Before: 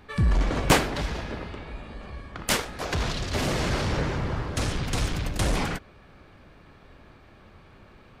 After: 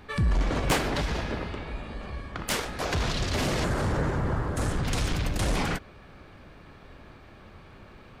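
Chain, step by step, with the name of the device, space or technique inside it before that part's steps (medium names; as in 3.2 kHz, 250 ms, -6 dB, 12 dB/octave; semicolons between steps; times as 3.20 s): clipper into limiter (hard clipper -14.5 dBFS, distortion -23 dB; peak limiter -21.5 dBFS, peak gain reduction 7 dB); 3.64–4.85 s: high-order bell 3.6 kHz -8.5 dB; trim +2.5 dB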